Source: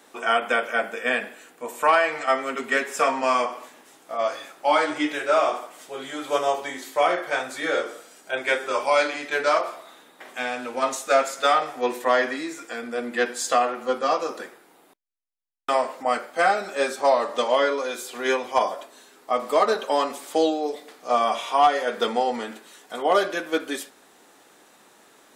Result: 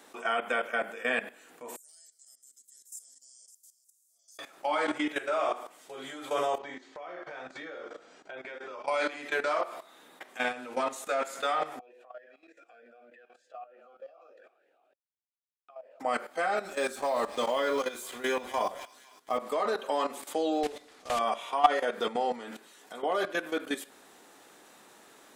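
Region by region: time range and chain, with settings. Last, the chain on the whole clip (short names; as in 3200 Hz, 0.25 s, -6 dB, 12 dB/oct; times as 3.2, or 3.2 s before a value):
1.76–4.39 reverse delay 0.298 s, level -12 dB + inverse Chebyshev high-pass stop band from 2700 Hz, stop band 50 dB
6.58–8.88 LPF 6800 Hz 24 dB/oct + high shelf 4200 Hz -11 dB + compressor 4:1, threshold -37 dBFS
11.79–16 compressor, threshold -35 dBFS + vowel sweep a-e 3.3 Hz
16.65–19.38 G.711 law mismatch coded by A + tone controls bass +5 dB, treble +5 dB + thin delay 0.252 s, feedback 50%, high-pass 1600 Hz, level -13 dB
20.63–21.21 block floating point 3-bit + LPF 8300 Hz + bell 500 Hz -3 dB 2.6 oct
whole clip: dynamic EQ 5400 Hz, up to -6 dB, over -48 dBFS, Q 2.1; level quantiser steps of 14 dB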